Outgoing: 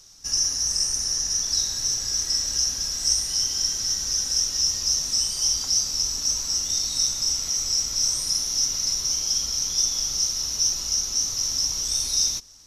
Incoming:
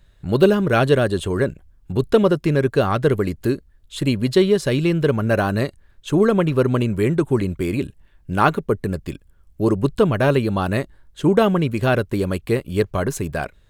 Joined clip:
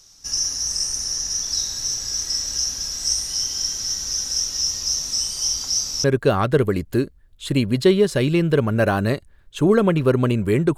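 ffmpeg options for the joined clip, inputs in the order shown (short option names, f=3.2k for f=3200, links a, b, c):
-filter_complex "[0:a]apad=whole_dur=10.77,atrim=end=10.77,atrim=end=6.042[a];[1:a]atrim=start=2.548:end=7.28[b];[a][b]acrossfade=d=0.004:c1=hsin:c2=hsin"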